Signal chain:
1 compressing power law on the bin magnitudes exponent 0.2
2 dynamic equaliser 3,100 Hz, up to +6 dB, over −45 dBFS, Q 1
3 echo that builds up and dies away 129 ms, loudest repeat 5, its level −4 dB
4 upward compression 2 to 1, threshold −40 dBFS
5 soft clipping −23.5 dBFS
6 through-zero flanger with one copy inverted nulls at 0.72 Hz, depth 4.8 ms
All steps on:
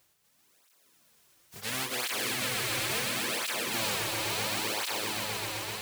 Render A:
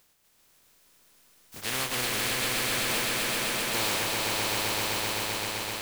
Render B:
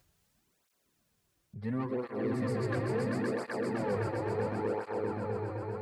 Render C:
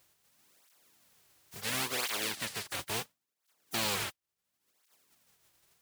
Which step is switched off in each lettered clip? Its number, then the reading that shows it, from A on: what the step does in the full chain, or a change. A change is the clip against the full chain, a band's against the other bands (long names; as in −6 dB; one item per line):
6, change in crest factor −3.0 dB
1, 8 kHz band −25.5 dB
3, change in crest factor +6.0 dB